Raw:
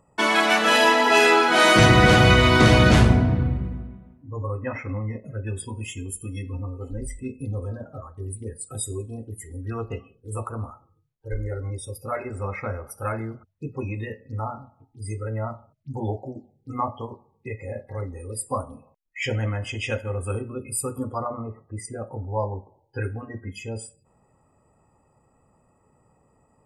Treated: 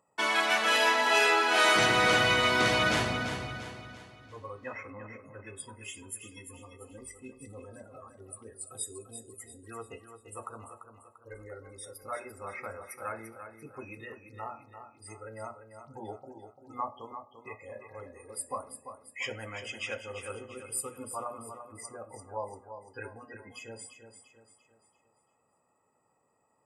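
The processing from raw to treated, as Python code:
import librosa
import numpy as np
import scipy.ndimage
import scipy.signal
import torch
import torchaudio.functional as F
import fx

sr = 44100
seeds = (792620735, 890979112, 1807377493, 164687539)

y = fx.highpass(x, sr, hz=680.0, slope=6)
y = fx.echo_feedback(y, sr, ms=343, feedback_pct=43, wet_db=-9.0)
y = y * 10.0 ** (-6.0 / 20.0)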